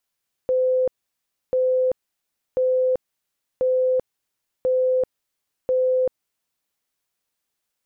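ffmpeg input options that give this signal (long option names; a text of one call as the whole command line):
ffmpeg -f lavfi -i "aevalsrc='0.15*sin(2*PI*512*mod(t,1.04))*lt(mod(t,1.04),198/512)':duration=6.24:sample_rate=44100" out.wav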